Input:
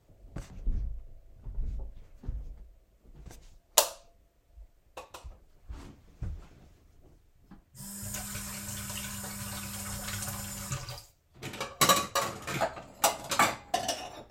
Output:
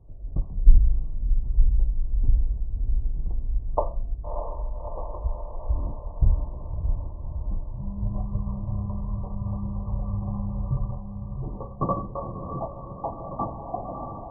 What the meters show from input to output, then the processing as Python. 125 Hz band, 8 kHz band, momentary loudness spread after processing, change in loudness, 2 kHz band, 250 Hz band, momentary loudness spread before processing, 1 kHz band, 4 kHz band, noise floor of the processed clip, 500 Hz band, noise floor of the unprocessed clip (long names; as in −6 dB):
+14.0 dB, below −40 dB, 10 LU, +2.0 dB, below −40 dB, +7.5 dB, 22 LU, −1.0 dB, below −40 dB, −38 dBFS, +2.5 dB, −65 dBFS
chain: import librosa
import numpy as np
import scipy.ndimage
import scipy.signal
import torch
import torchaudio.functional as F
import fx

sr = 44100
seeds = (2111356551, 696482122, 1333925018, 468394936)

y = fx.tilt_eq(x, sr, slope=-2.5)
y = fx.echo_diffused(y, sr, ms=628, feedback_pct=66, wet_db=-6)
y = fx.rider(y, sr, range_db=5, speed_s=2.0)
y = fx.brickwall_lowpass(y, sr, high_hz=1200.0)
y = fx.low_shelf(y, sr, hz=72.0, db=7.5)
y = y * librosa.db_to_amplitude(-1.0)